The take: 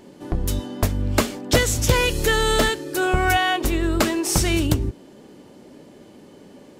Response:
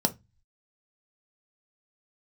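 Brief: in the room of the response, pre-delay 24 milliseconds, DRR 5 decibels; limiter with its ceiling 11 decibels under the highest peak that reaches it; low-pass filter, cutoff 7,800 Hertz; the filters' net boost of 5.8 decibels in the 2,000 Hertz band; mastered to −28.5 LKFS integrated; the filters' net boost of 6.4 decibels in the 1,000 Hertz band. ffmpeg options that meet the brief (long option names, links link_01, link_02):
-filter_complex "[0:a]lowpass=7800,equalizer=frequency=1000:width_type=o:gain=8,equalizer=frequency=2000:width_type=o:gain=4.5,alimiter=limit=-10.5dB:level=0:latency=1,asplit=2[link_01][link_02];[1:a]atrim=start_sample=2205,adelay=24[link_03];[link_02][link_03]afir=irnorm=-1:irlink=0,volume=-14dB[link_04];[link_01][link_04]amix=inputs=2:normalize=0,volume=-9dB"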